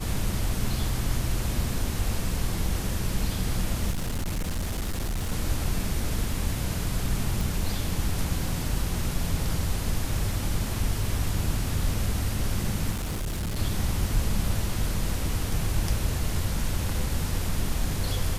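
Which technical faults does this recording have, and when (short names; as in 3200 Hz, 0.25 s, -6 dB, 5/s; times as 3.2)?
3.9–5.32 clipped -25 dBFS
7.41 pop
12.91–13.59 clipped -26.5 dBFS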